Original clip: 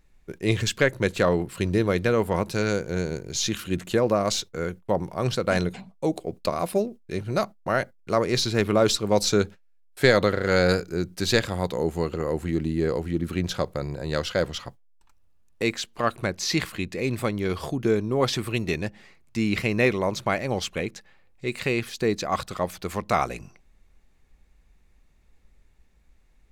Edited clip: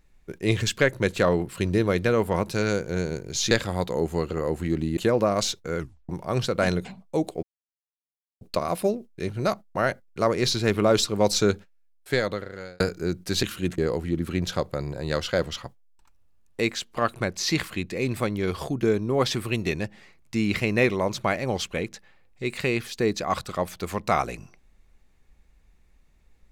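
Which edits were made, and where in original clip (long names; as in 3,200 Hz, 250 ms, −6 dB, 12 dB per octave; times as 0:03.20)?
0:03.51–0:03.86: swap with 0:11.34–0:12.80
0:04.67: tape stop 0.31 s
0:06.32: splice in silence 0.98 s
0:09.43–0:10.71: fade out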